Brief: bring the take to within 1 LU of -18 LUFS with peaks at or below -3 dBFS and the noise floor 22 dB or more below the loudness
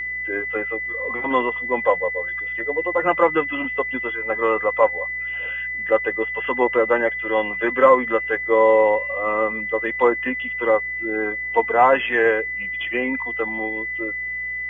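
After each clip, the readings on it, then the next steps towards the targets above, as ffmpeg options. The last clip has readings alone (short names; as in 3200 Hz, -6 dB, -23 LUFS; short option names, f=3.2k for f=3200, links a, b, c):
hum 60 Hz; harmonics up to 180 Hz; hum level -48 dBFS; steady tone 2000 Hz; tone level -25 dBFS; loudness -20.5 LUFS; peak -2.5 dBFS; loudness target -18.0 LUFS
-> -af "bandreject=f=60:t=h:w=4,bandreject=f=120:t=h:w=4,bandreject=f=180:t=h:w=4"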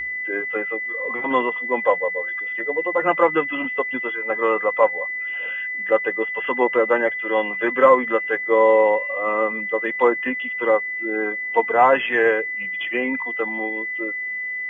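hum none; steady tone 2000 Hz; tone level -25 dBFS
-> -af "bandreject=f=2k:w=30"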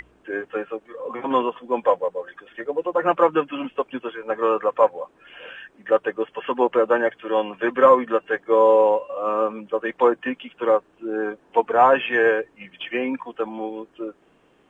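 steady tone none; loudness -21.5 LUFS; peak -2.5 dBFS; loudness target -18.0 LUFS
-> -af "volume=3.5dB,alimiter=limit=-3dB:level=0:latency=1"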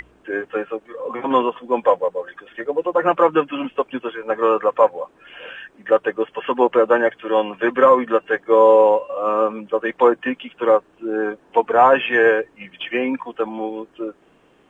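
loudness -18.5 LUFS; peak -3.0 dBFS; noise floor -56 dBFS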